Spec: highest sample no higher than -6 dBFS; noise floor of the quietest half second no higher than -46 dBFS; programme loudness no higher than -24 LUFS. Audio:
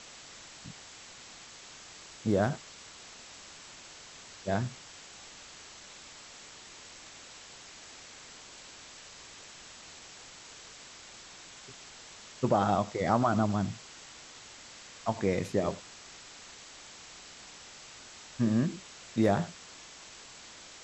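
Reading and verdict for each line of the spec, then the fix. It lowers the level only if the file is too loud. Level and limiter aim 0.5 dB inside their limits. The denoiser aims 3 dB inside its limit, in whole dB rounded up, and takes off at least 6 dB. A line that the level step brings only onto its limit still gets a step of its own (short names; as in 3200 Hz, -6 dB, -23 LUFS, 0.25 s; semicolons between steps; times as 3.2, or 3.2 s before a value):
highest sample -12.5 dBFS: OK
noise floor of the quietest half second -50 dBFS: OK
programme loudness -30.5 LUFS: OK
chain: none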